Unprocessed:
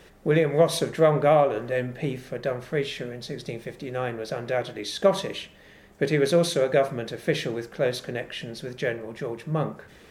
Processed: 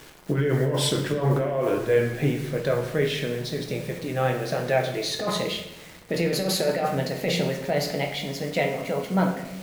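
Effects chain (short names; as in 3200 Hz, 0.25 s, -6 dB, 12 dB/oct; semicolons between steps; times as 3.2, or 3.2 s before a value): speed glide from 87% -> 123%; bit-crush 8-bit; negative-ratio compressor -24 dBFS, ratio -1; reverb RT60 0.90 s, pre-delay 6 ms, DRR 3 dB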